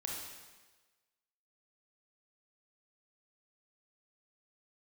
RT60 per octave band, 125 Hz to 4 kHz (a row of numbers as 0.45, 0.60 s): 1.1, 1.2, 1.3, 1.3, 1.2, 1.2 s